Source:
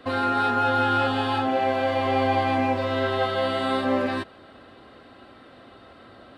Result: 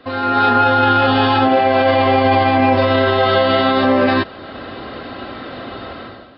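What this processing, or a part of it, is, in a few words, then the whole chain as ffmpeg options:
low-bitrate web radio: -af "dynaudnorm=framelen=110:gausssize=7:maxgain=16dB,alimiter=limit=-8dB:level=0:latency=1:release=20,volume=3dB" -ar 12000 -c:a libmp3lame -b:a 40k

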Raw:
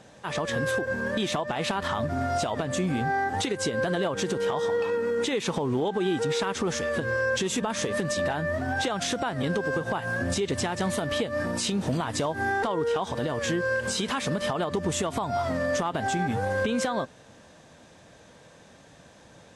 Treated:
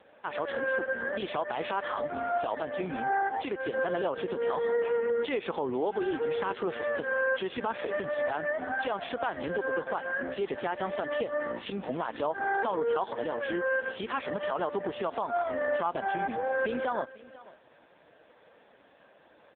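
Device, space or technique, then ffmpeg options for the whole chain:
satellite phone: -af "highpass=340,lowpass=3300,aecho=1:1:497:0.1" -ar 8000 -c:a libopencore_amrnb -b:a 5150

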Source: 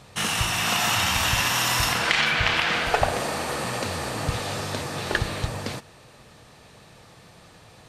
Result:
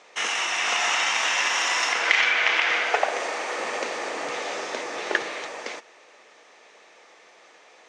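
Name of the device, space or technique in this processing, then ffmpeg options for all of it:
phone speaker on a table: -filter_complex "[0:a]asettb=1/sr,asplit=3[link_01][link_02][link_03];[link_01]atrim=end=3.584[link_04];[link_02]atrim=start=3.58:end=5.29,asetpts=PTS-STARTPTS,afade=type=in:duration=0.004:curve=qsin,afade=type=out:start_time=1.706:duration=0.004:curve=qsin,lowshelf=frequency=410:gain=6.5[link_05];[link_03]atrim=start=5.286[link_06];[link_04][link_05]acrossfade=duration=0.004:curve1=hsin:curve2=qsin[link_07];[link_07][link_06]acrossfade=duration=0.004:curve1=qsin:curve2=hsin,highpass=frequency=360:width=0.5412,highpass=frequency=360:width=1.3066,equalizer=frequency=2100:width_type=q:width=4:gain=7,equalizer=frequency=4300:width_type=q:width=4:gain=-6,equalizer=frequency=6300:width_type=q:width=4:gain=4,lowpass=frequency=6800:width=0.5412,lowpass=frequency=6800:width=1.3066,volume=-1dB"

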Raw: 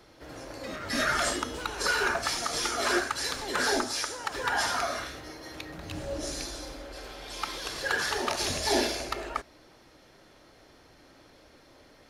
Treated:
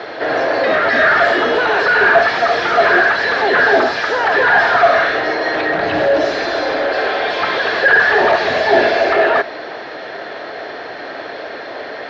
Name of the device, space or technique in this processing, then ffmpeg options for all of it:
overdrive pedal into a guitar cabinet: -filter_complex "[0:a]asplit=2[link_01][link_02];[link_02]highpass=frequency=720:poles=1,volume=30dB,asoftclip=type=tanh:threshold=-13.5dB[link_03];[link_01][link_03]amix=inputs=2:normalize=0,lowpass=frequency=2400:poles=1,volume=-6dB,highpass=79,equalizer=frequency=430:width_type=q:width=4:gain=8,equalizer=frequency=680:width_type=q:width=4:gain=10,equalizer=frequency=1700:width_type=q:width=4:gain=9,equalizer=frequency=4100:width_type=q:width=4:gain=3,lowpass=frequency=4500:width=0.5412,lowpass=frequency=4500:width=1.3066,acrossover=split=2900[link_04][link_05];[link_05]acompressor=threshold=-34dB:ratio=4:attack=1:release=60[link_06];[link_04][link_06]amix=inputs=2:normalize=0,volume=4.5dB"

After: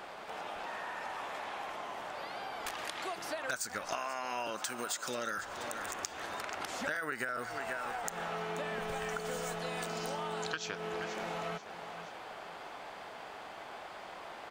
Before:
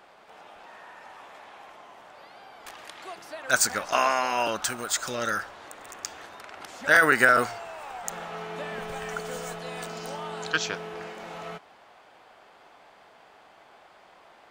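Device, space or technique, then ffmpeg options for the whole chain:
serial compression, leveller first: -filter_complex "[0:a]asettb=1/sr,asplit=3[link_01][link_02][link_03];[link_01]atrim=end=4.504[link_04];[link_02]atrim=start=4.5:end=5.38,asetpts=PTS-STARTPTS,afade=type=in:duration=0.004:curve=qsin,afade=type=out:start_time=0.876:duration=0.004:curve=qsin,highpass=170[link_05];[link_03]atrim=start=5.376[link_06];[link_04][link_05]acrossfade=duration=0.004:curve1=hsin:curve2=qsin[link_07];[link_07][link_06]acrossfade=duration=0.004:curve1=qsin:curve2=hsin,aecho=1:1:482|964|1446:0.106|0.035|0.0115,acompressor=threshold=-29dB:ratio=3,acompressor=threshold=-44dB:ratio=4,volume=7.5dB"

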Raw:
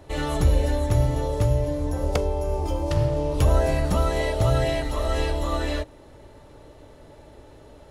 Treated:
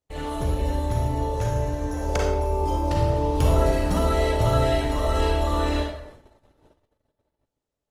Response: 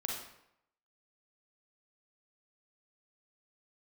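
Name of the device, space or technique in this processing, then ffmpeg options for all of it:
speakerphone in a meeting room: -filter_complex "[0:a]asettb=1/sr,asplit=3[link_01][link_02][link_03];[link_01]atrim=end=1.354[link_04];[link_02]atrim=start=1.35:end=2.25,asetpts=PTS-STARTPTS,afade=type=in:duration=0.004:curve=qsin,afade=type=out:start_time=0.896:duration=0.004:curve=qsin,equalizer=frequency=250:width_type=o:width=0.33:gain=-10,equalizer=frequency=1600:width_type=o:width=0.33:gain=10,equalizer=frequency=2500:width_type=o:width=0.33:gain=3,equalizer=frequency=6300:width_type=o:width=0.33:gain=8[link_05];[link_03]atrim=start=2.246[link_06];[link_04][link_05]acrossfade=duration=0.004:curve1=hsin:curve2=qsin[link_07];[link_07][link_06]acrossfade=duration=0.004:curve1=qsin:curve2=hsin[link_08];[1:a]atrim=start_sample=2205[link_09];[link_08][link_09]afir=irnorm=-1:irlink=0,dynaudnorm=framelen=430:gausssize=9:maxgain=7dB,agate=range=-34dB:threshold=-39dB:ratio=16:detection=peak,volume=-5.5dB" -ar 48000 -c:a libopus -b:a 24k

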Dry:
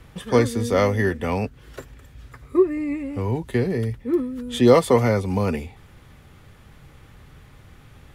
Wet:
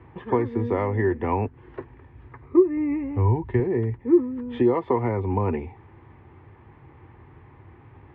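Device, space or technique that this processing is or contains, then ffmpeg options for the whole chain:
bass amplifier: -filter_complex "[0:a]acompressor=threshold=-20dB:ratio=5,highpass=80,equalizer=frequency=95:width_type=q:width=4:gain=5,equalizer=frequency=180:width_type=q:width=4:gain=-8,equalizer=frequency=350:width_type=q:width=4:gain=9,equalizer=frequency=570:width_type=q:width=4:gain=-6,equalizer=frequency=930:width_type=q:width=4:gain=9,equalizer=frequency=1400:width_type=q:width=4:gain=-8,lowpass=frequency=2100:width=0.5412,lowpass=frequency=2100:width=1.3066,asettb=1/sr,asplit=3[link_01][link_02][link_03];[link_01]atrim=end=2.564[link_04];[link_02]atrim=start=2.56:end=3.6,asetpts=PTS-STARTPTS,afade=type=in:duration=0.004:curve=qsin,afade=type=out:start_time=1.036:duration=0.004:curve=qsin,asubboost=boost=9:cutoff=140[link_05];[link_03]atrim=start=3.596[link_06];[link_04][link_05]acrossfade=duration=0.004:curve1=hsin:curve2=qsin[link_07];[link_07][link_06]acrossfade=duration=0.004:curve1=qsin:curve2=hsin"

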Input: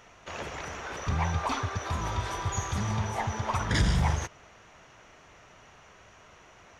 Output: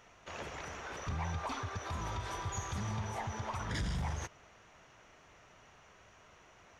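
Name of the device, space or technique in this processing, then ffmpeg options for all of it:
soft clipper into limiter: -af "asoftclip=type=tanh:threshold=-18dB,alimiter=limit=-23.5dB:level=0:latency=1:release=103,volume=-6dB"

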